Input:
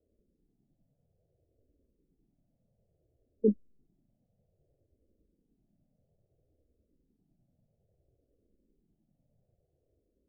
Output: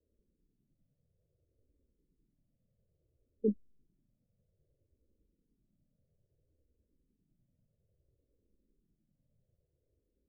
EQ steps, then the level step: Chebyshev low-pass 560 Hz, order 3; low shelf 180 Hz +5 dB; -6.0 dB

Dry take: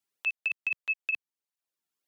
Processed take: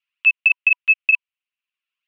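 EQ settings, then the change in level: Chebyshev high-pass 980 Hz, order 10; synth low-pass 2700 Hz, resonance Q 5.7; bell 1800 Hz -2 dB; +1.5 dB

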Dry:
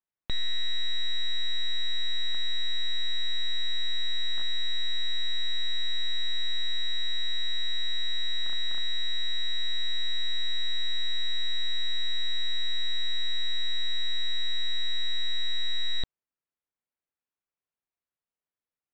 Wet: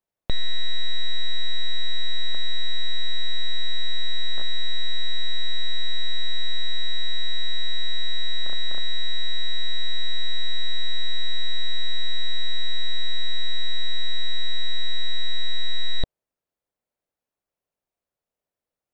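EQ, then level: low shelf 290 Hz +8 dB; bell 580 Hz +10 dB 1.1 oct; +1.5 dB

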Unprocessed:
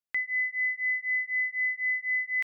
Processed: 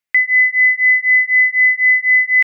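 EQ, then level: bell 2100 Hz +11 dB; +6.0 dB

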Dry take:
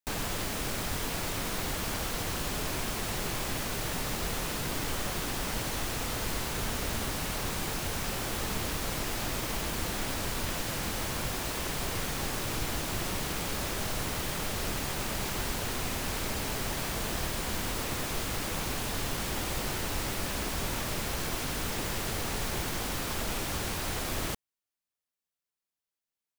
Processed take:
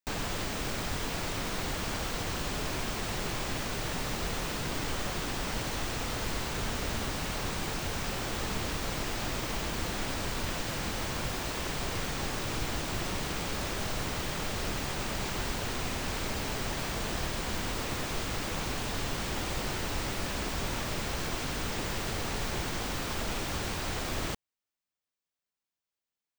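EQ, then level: bell 12000 Hz -12 dB 0.56 oct; 0.0 dB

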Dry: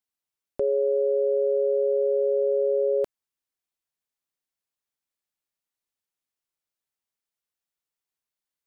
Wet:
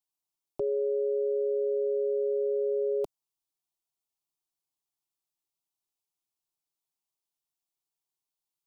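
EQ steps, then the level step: fixed phaser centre 340 Hz, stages 8; 0.0 dB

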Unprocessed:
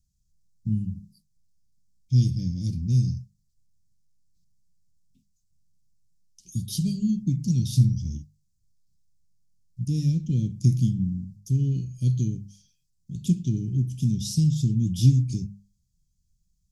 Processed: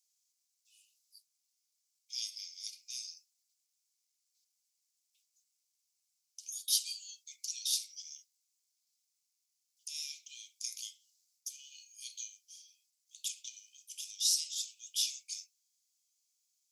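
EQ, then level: brick-wall FIR high-pass 2000 Hz; +5.0 dB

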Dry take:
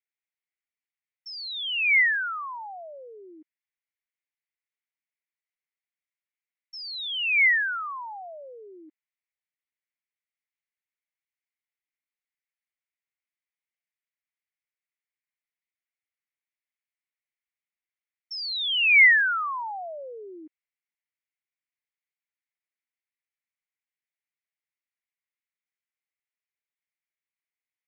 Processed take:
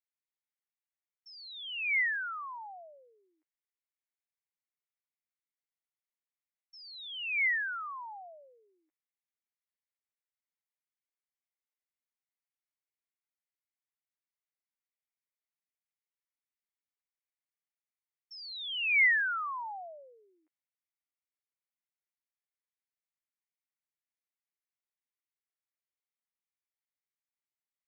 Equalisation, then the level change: HPF 710 Hz 24 dB/oct; high shelf 2300 Hz -10 dB; -4.5 dB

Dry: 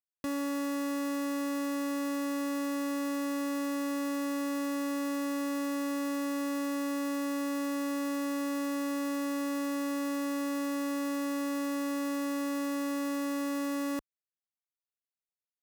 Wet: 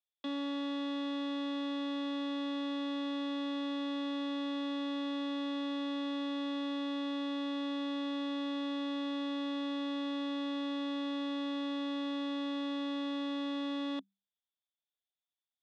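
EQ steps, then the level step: rippled Chebyshev high-pass 190 Hz, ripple 9 dB; synth low-pass 3500 Hz, resonance Q 14; -1.5 dB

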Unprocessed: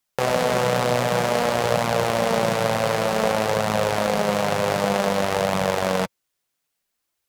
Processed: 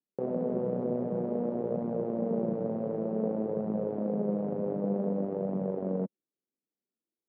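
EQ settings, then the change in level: Butterworth band-pass 280 Hz, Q 1.2; -1.5 dB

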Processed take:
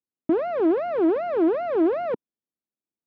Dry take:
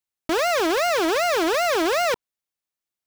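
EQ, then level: band-pass 260 Hz, Q 1.6; air absorption 270 m; +7.5 dB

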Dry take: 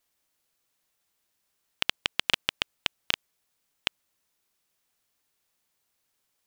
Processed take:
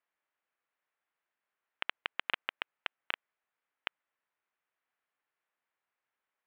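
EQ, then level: band-pass 1500 Hz, Q 1.3; air absorption 500 m; bell 1300 Hz -4.5 dB 1.2 oct; +5.0 dB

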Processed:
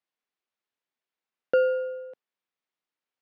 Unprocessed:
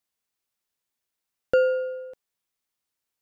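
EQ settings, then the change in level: BPF 200–3300 Hz; -1.5 dB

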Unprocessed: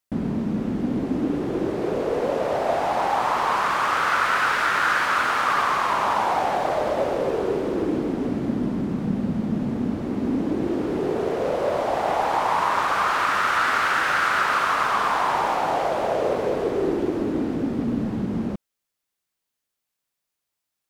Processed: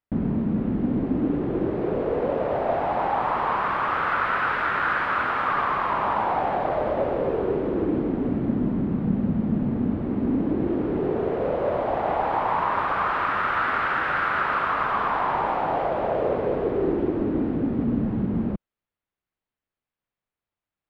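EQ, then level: air absorption 480 m; low shelf 120 Hz +6 dB; high shelf 8000 Hz +9.5 dB; 0.0 dB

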